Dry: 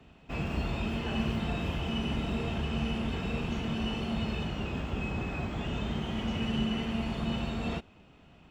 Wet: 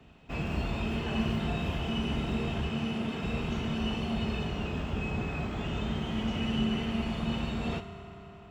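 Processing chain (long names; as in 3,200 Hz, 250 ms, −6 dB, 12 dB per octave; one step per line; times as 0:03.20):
0:02.69–0:03.23: Chebyshev high-pass filter 170 Hz, order 2
on a send: parametric band 520 Hz −14.5 dB 0.44 octaves + convolution reverb RT60 5.0 s, pre-delay 4 ms, DRR 8 dB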